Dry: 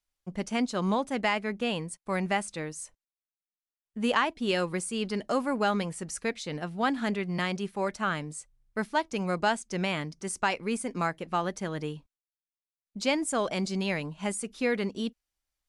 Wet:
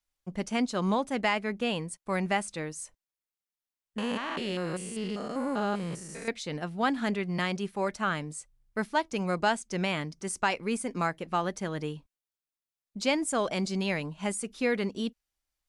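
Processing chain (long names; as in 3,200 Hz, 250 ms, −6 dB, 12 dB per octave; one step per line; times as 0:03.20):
0:03.98–0:06.28: spectrum averaged block by block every 200 ms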